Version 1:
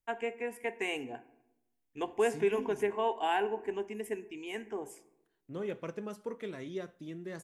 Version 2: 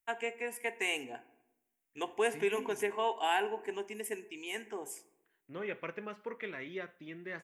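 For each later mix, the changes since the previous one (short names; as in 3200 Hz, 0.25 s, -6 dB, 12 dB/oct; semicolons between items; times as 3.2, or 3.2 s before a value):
second voice: add synth low-pass 2200 Hz, resonance Q 2.1; master: add tilt +2.5 dB/oct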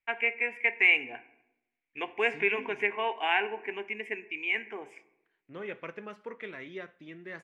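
first voice: add synth low-pass 2300 Hz, resonance Q 6.3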